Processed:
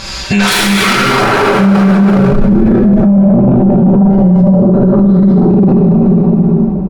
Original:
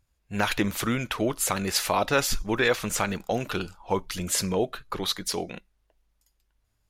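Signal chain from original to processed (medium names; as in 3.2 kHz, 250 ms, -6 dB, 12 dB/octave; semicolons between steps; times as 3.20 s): high-pass 46 Hz 6 dB/octave; bass shelf 380 Hz -10.5 dB; comb 5.2 ms, depth 83%; reverse; compression 16:1, threshold -33 dBFS, peak gain reduction 17.5 dB; reverse; low-pass sweep 4.9 kHz -> 210 Hz, 0.47–1.63 s; sine folder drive 12 dB, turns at -20.5 dBFS; plate-style reverb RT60 2.6 s, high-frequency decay 0.9×, DRR -8 dB; loudness maximiser +34.5 dB; trim -1 dB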